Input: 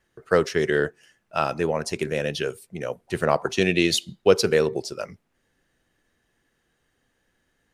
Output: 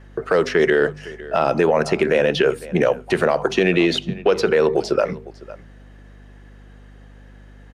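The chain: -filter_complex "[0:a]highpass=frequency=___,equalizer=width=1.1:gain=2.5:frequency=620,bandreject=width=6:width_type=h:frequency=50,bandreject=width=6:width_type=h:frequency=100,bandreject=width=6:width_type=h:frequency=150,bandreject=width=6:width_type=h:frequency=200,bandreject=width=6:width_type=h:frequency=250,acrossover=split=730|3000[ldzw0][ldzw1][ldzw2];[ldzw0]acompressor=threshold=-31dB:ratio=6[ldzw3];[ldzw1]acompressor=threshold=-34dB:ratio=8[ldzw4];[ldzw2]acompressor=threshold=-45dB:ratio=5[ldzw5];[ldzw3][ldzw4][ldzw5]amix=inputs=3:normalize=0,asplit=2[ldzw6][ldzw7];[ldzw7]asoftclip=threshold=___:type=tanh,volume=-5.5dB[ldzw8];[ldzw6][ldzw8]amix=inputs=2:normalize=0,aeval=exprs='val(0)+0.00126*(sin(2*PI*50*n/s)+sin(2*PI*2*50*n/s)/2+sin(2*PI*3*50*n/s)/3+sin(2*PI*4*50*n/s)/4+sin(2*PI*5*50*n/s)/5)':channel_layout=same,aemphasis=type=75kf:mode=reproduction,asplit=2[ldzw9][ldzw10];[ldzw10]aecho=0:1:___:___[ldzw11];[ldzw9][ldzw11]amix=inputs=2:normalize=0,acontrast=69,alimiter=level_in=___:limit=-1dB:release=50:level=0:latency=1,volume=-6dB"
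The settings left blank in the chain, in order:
160, -22.5dB, 504, 0.0841, 14.5dB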